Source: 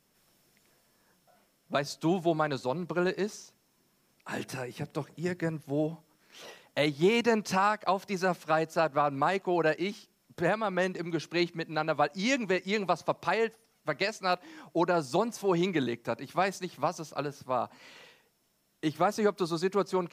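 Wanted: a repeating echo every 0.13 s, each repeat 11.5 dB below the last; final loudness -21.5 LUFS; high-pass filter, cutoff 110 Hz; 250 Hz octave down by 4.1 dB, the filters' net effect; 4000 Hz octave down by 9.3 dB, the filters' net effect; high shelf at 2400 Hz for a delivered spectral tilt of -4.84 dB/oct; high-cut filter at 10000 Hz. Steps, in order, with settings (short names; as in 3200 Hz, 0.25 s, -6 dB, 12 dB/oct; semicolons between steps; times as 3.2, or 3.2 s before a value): HPF 110 Hz; LPF 10000 Hz; bell 250 Hz -6 dB; high shelf 2400 Hz -5 dB; bell 4000 Hz -7.5 dB; feedback echo 0.13 s, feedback 27%, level -11.5 dB; gain +11 dB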